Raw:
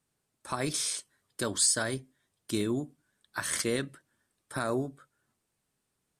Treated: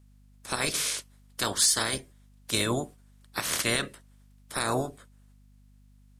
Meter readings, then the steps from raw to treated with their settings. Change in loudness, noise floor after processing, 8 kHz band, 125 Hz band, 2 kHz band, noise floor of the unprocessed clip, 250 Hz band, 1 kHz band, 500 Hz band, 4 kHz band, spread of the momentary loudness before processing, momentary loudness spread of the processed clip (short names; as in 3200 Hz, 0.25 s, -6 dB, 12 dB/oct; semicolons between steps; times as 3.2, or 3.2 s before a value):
+3.0 dB, -57 dBFS, +2.5 dB, +2.0 dB, +5.0 dB, -81 dBFS, -1.5 dB, +5.0 dB, +0.5 dB, +6.5 dB, 16 LU, 16 LU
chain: spectral limiter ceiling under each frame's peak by 19 dB; hum 50 Hz, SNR 25 dB; gain +3 dB